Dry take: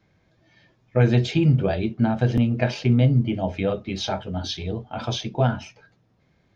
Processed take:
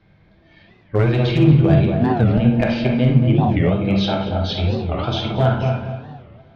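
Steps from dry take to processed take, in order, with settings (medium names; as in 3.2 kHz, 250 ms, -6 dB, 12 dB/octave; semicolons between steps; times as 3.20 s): low-pass 4.4 kHz 24 dB/octave; bass shelf 66 Hz +10.5 dB; hum notches 60/120/180/240 Hz; in parallel at -1 dB: compression 10:1, threshold -29 dBFS, peak gain reduction 17.5 dB; on the sum: one-sided clip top -14 dBFS, bottom -7.5 dBFS; filtered feedback delay 230 ms, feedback 36%, low-pass 1 kHz, level -3.5 dB; on a send at -2 dB: reverberation, pre-delay 39 ms; on the sum: warped record 45 rpm, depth 250 cents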